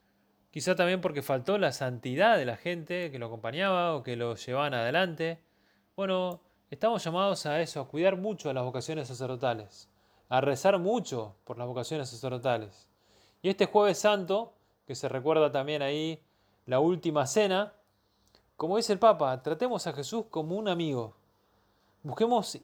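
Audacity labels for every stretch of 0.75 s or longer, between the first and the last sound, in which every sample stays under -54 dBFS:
21.130000	22.040000	silence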